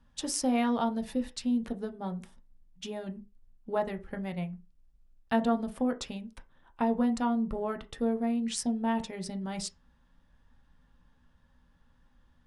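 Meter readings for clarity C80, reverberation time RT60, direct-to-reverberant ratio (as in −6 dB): 24.0 dB, non-exponential decay, 6.0 dB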